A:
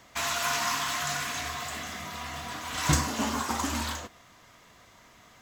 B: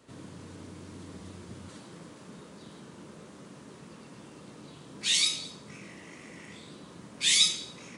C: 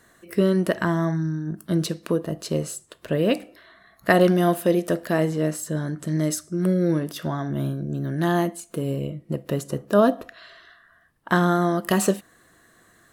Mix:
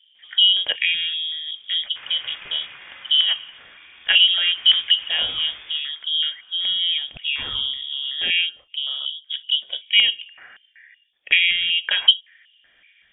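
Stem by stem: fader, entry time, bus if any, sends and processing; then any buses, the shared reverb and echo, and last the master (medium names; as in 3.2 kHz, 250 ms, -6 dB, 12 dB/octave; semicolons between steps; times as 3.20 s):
-20.0 dB, 1.80 s, no send, sample-and-hold 10×; peaking EQ 1.8 kHz +7 dB 1.4 oct
0.0 dB, 0.15 s, no send, auto duck -12 dB, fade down 0.30 s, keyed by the third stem
-7.0 dB, 0.00 s, no send, bass shelf 240 Hz -5.5 dB; step-sequenced low-pass 5.3 Hz 440–4200 Hz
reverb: none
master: frequency inversion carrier 3.5 kHz; treble shelf 2.2 kHz +11 dB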